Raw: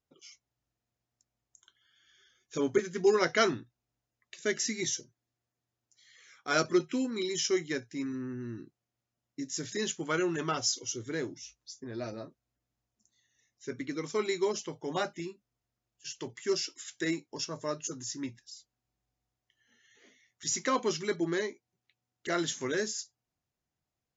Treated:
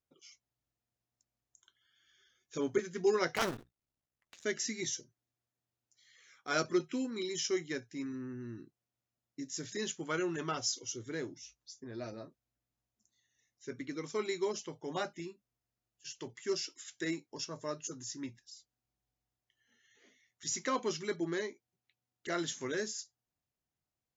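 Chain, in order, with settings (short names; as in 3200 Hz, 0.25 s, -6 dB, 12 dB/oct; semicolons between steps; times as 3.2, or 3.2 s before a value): 3.35–4.45 cycle switcher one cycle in 2, muted; gain -4.5 dB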